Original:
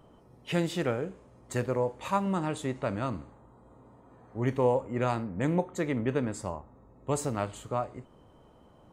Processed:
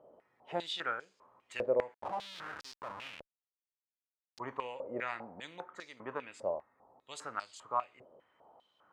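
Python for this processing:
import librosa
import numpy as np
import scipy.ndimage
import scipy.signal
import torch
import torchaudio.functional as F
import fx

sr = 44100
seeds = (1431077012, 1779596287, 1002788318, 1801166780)

y = fx.schmitt(x, sr, flips_db=-34.5, at=(1.94, 4.39))
y = fx.filter_held_bandpass(y, sr, hz=5.0, low_hz=570.0, high_hz=4900.0)
y = y * 10.0 ** (6.0 / 20.0)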